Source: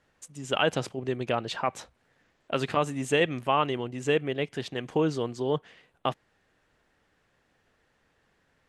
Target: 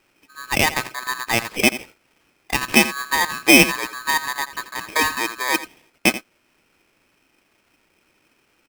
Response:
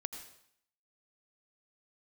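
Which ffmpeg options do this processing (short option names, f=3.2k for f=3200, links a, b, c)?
-filter_complex "[0:a]lowpass=f=1.1k:t=q:w=5.9,asplit=2[a][b];[b]aecho=0:1:85:0.188[c];[a][c]amix=inputs=2:normalize=0,aeval=exprs='val(0)*sgn(sin(2*PI*1400*n/s))':c=same,volume=2.5dB"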